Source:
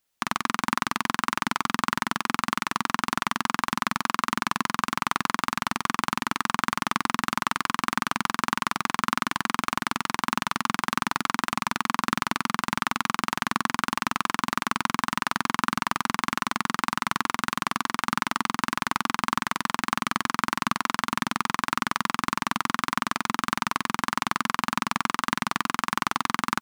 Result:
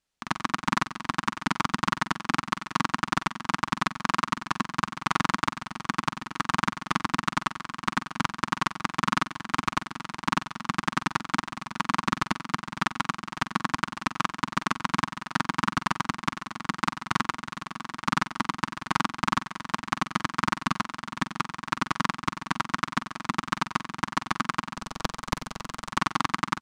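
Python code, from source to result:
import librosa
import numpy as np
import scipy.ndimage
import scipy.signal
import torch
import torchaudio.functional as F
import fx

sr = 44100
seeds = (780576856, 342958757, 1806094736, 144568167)

p1 = fx.overflow_wrap(x, sr, gain_db=8.0, at=(24.75, 25.92))
p2 = scipy.signal.sosfilt(scipy.signal.butter(2, 7700.0, 'lowpass', fs=sr, output='sos'), p1)
p3 = fx.low_shelf(p2, sr, hz=160.0, db=9.0)
p4 = p3 + fx.echo_single(p3, sr, ms=86, db=-5.0, dry=0)
y = fx.level_steps(p4, sr, step_db=12)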